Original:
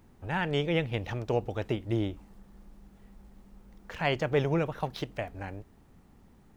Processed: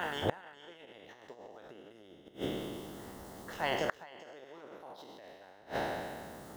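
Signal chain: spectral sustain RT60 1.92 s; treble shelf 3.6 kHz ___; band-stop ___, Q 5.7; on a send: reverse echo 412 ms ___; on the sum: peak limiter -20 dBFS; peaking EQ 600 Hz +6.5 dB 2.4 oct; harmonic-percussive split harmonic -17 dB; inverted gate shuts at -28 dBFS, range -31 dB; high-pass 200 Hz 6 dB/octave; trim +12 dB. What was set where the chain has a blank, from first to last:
+9 dB, 2.4 kHz, -19 dB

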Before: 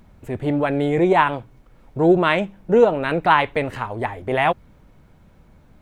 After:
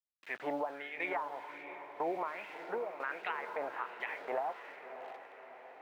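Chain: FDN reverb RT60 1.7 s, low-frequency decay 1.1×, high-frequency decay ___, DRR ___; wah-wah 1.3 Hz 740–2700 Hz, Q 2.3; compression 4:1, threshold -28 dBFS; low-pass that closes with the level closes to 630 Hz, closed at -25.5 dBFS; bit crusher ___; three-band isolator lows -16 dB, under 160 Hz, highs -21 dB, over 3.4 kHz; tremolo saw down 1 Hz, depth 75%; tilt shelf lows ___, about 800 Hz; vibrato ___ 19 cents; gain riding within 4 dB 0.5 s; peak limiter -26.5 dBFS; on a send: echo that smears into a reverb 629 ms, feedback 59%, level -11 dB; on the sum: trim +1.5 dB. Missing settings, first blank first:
0.55×, 19.5 dB, 9-bit, -6 dB, 3.4 Hz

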